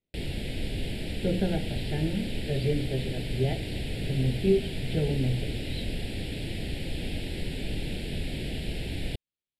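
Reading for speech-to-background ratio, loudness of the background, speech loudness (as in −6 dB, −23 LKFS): 4.0 dB, −34.5 LKFS, −30.5 LKFS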